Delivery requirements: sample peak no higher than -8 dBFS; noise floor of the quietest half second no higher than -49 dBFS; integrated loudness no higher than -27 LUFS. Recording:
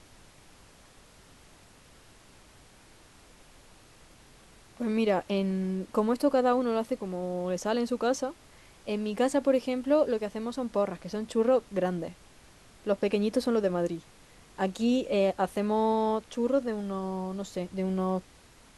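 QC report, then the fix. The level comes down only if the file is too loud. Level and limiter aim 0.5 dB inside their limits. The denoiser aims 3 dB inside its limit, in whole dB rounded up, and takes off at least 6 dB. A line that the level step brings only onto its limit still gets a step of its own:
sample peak -12.5 dBFS: OK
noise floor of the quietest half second -56 dBFS: OK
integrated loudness -29.0 LUFS: OK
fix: none

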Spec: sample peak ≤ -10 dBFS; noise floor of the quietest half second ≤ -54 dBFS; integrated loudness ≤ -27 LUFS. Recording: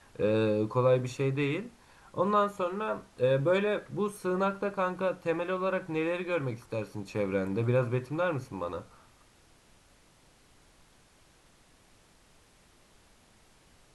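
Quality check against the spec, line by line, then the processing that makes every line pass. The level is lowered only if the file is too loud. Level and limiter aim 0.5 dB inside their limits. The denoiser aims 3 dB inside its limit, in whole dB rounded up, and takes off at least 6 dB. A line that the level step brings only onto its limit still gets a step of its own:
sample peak -14.5 dBFS: OK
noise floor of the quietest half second -61 dBFS: OK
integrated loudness -30.5 LUFS: OK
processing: none

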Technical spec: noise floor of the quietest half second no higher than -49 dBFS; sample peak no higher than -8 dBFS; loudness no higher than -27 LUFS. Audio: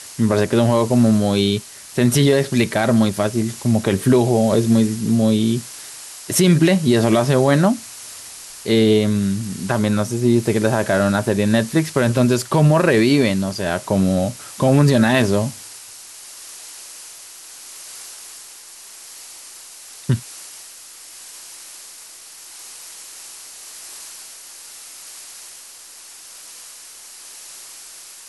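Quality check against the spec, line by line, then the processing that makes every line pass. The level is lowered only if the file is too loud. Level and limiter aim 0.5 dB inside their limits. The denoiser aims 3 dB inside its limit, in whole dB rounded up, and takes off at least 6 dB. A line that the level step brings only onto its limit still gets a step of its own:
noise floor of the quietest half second -41 dBFS: fail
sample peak -4.5 dBFS: fail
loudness -17.5 LUFS: fail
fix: gain -10 dB

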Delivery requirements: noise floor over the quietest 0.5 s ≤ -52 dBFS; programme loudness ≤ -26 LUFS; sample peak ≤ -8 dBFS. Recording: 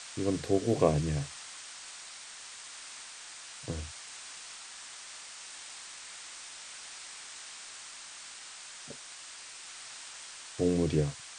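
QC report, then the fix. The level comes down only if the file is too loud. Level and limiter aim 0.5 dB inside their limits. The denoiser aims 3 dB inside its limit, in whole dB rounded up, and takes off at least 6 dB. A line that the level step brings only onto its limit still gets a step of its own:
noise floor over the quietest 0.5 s -47 dBFS: fail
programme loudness -36.5 LUFS: OK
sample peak -11.0 dBFS: OK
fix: denoiser 8 dB, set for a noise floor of -47 dBFS

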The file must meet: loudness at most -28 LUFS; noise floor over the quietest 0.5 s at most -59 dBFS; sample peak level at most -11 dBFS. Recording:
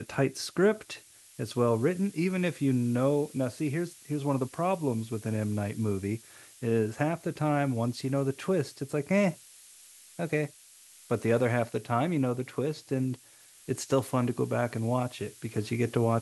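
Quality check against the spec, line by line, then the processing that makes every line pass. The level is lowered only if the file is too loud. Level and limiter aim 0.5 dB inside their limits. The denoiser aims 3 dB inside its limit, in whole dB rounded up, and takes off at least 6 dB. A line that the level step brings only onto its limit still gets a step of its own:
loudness -30.0 LUFS: OK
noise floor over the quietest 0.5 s -56 dBFS: fail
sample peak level -13.0 dBFS: OK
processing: denoiser 6 dB, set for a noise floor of -56 dBFS

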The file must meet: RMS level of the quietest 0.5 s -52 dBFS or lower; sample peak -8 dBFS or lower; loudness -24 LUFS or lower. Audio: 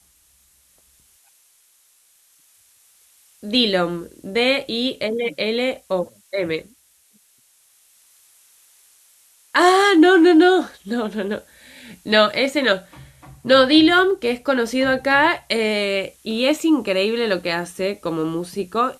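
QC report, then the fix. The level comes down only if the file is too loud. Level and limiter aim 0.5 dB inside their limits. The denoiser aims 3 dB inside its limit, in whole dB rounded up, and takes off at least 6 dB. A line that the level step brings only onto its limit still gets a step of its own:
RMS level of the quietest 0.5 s -58 dBFS: OK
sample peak -3.5 dBFS: fail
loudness -18.5 LUFS: fail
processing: gain -6 dB

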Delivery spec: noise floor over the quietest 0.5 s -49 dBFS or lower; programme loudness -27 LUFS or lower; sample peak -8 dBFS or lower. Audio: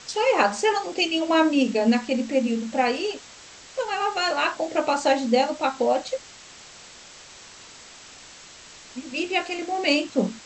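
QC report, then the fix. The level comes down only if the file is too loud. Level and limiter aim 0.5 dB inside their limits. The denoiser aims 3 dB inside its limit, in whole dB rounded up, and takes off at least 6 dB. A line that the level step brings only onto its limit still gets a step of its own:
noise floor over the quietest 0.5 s -46 dBFS: fail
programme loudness -23.5 LUFS: fail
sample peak -6.0 dBFS: fail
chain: gain -4 dB

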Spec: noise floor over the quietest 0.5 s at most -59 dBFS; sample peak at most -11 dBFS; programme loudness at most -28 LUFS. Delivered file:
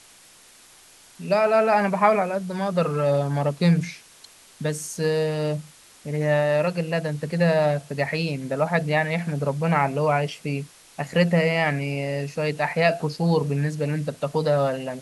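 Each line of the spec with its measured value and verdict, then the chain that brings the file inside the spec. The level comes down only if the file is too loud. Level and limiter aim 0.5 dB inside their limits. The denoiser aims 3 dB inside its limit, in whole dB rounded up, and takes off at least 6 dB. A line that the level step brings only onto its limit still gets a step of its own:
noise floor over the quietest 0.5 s -51 dBFS: fail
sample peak -5.0 dBFS: fail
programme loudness -23.5 LUFS: fail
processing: denoiser 6 dB, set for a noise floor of -51 dBFS; gain -5 dB; limiter -11.5 dBFS

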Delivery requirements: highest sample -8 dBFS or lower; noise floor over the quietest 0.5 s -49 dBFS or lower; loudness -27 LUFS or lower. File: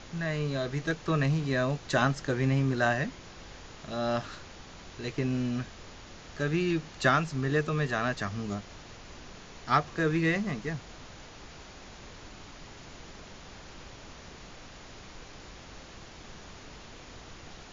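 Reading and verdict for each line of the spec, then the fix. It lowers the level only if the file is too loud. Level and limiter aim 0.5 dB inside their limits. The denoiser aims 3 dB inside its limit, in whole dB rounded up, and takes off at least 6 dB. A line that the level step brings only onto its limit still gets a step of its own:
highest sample -10.5 dBFS: OK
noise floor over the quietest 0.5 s -47 dBFS: fail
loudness -29.5 LUFS: OK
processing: denoiser 6 dB, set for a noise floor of -47 dBFS

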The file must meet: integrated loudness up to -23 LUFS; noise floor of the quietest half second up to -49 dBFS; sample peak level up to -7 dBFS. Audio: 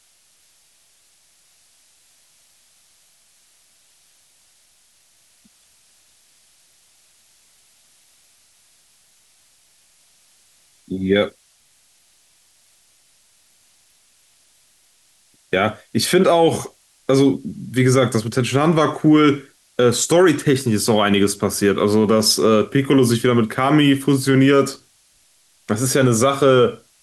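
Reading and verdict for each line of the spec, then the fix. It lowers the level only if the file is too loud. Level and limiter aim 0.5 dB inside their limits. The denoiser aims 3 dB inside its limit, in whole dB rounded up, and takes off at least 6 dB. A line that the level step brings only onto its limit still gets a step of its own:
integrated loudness -17.0 LUFS: fail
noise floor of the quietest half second -57 dBFS: OK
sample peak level -5.5 dBFS: fail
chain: gain -6.5 dB

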